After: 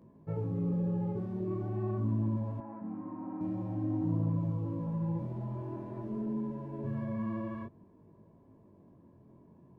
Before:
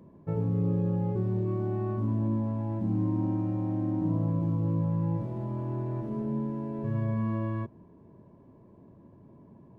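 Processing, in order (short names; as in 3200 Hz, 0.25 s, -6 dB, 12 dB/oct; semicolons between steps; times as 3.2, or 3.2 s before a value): vibrato 14 Hz 34 cents; chorus 0.48 Hz, delay 18.5 ms, depth 5.1 ms; 2.6–3.41 speaker cabinet 270–2100 Hz, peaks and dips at 350 Hz -7 dB, 580 Hz -4 dB, 1200 Hz +6 dB; gain -2 dB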